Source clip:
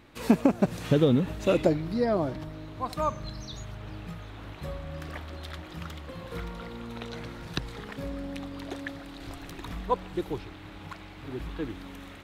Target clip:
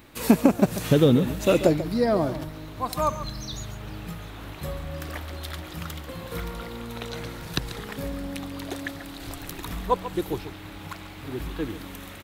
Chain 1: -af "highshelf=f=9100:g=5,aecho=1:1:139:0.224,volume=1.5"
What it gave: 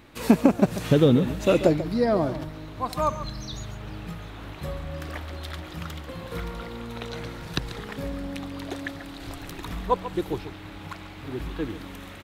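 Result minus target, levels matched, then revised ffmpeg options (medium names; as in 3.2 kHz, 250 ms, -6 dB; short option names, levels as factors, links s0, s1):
8 kHz band -4.5 dB
-af "highshelf=f=9100:g=17,aecho=1:1:139:0.224,volume=1.5"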